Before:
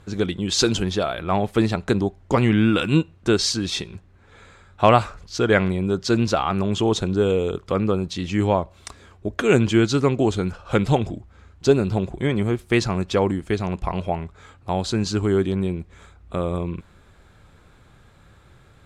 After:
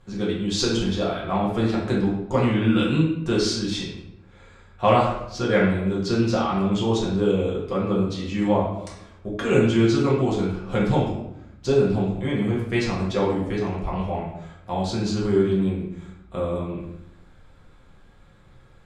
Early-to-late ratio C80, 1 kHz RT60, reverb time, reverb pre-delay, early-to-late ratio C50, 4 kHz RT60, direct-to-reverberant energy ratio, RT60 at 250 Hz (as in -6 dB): 6.5 dB, 0.80 s, 0.85 s, 4 ms, 3.0 dB, 0.60 s, -5.5 dB, 1.0 s